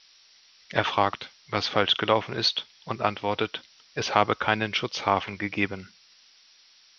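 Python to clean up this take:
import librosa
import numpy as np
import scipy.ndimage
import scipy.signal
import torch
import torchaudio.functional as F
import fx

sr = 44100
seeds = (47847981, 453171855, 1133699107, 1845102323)

y = fx.noise_reduce(x, sr, print_start_s=6.44, print_end_s=6.94, reduce_db=13.0)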